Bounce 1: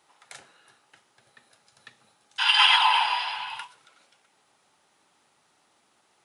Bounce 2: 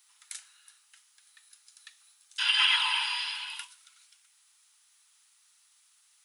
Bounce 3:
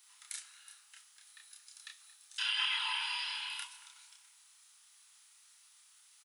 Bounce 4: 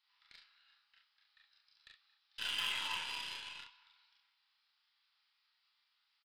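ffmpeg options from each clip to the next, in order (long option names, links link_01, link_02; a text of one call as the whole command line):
ffmpeg -i in.wav -filter_complex "[0:a]acrossover=split=2900[link_01][link_02];[link_02]acompressor=threshold=-33dB:ratio=4:attack=1:release=60[link_03];[link_01][link_03]amix=inputs=2:normalize=0,highpass=frequency=1000:width=0.5412,highpass=frequency=1000:width=1.3066,aderivative,volume=7dB" out.wav
ffmpeg -i in.wav -filter_complex "[0:a]acompressor=threshold=-42dB:ratio=2,asplit=2[link_01][link_02];[link_02]adelay=29,volume=-2.5dB[link_03];[link_01][link_03]amix=inputs=2:normalize=0,asplit=2[link_04][link_05];[link_05]adelay=226,lowpass=frequency=1400:poles=1,volume=-12dB,asplit=2[link_06][link_07];[link_07]adelay=226,lowpass=frequency=1400:poles=1,volume=0.52,asplit=2[link_08][link_09];[link_09]adelay=226,lowpass=frequency=1400:poles=1,volume=0.52,asplit=2[link_10][link_11];[link_11]adelay=226,lowpass=frequency=1400:poles=1,volume=0.52,asplit=2[link_12][link_13];[link_13]adelay=226,lowpass=frequency=1400:poles=1,volume=0.52[link_14];[link_04][link_06][link_08][link_10][link_12][link_14]amix=inputs=6:normalize=0" out.wav
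ffmpeg -i in.wav -filter_complex "[0:a]asplit=2[link_01][link_02];[link_02]adelay=40,volume=-2dB[link_03];[link_01][link_03]amix=inputs=2:normalize=0,aresample=11025,aresample=44100,aeval=exprs='0.1*(cos(1*acos(clip(val(0)/0.1,-1,1)))-cos(1*PI/2))+0.0282*(cos(2*acos(clip(val(0)/0.1,-1,1)))-cos(2*PI/2))+0.0141*(cos(4*acos(clip(val(0)/0.1,-1,1)))-cos(4*PI/2))+0.00794*(cos(7*acos(clip(val(0)/0.1,-1,1)))-cos(7*PI/2))+0.000631*(cos(8*acos(clip(val(0)/0.1,-1,1)))-cos(8*PI/2))':channel_layout=same,volume=-5dB" out.wav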